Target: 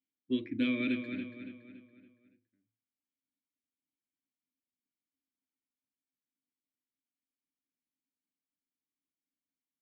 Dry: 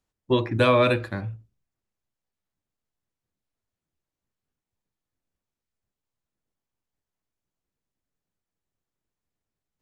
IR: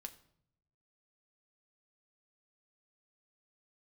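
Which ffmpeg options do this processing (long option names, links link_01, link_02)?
-filter_complex "[0:a]asplit=3[link_01][link_02][link_03];[link_01]bandpass=frequency=270:width_type=q:width=8,volume=0dB[link_04];[link_02]bandpass=frequency=2290:width_type=q:width=8,volume=-6dB[link_05];[link_03]bandpass=frequency=3010:width_type=q:width=8,volume=-9dB[link_06];[link_04][link_05][link_06]amix=inputs=3:normalize=0,asplit=2[link_07][link_08];[link_08]adelay=282,lowpass=frequency=4200:poles=1,volume=-7.5dB,asplit=2[link_09][link_10];[link_10]adelay=282,lowpass=frequency=4200:poles=1,volume=0.45,asplit=2[link_11][link_12];[link_12]adelay=282,lowpass=frequency=4200:poles=1,volume=0.45,asplit=2[link_13][link_14];[link_14]adelay=282,lowpass=frequency=4200:poles=1,volume=0.45,asplit=2[link_15][link_16];[link_16]adelay=282,lowpass=frequency=4200:poles=1,volume=0.45[link_17];[link_07][link_09][link_11][link_13][link_15][link_17]amix=inputs=6:normalize=0"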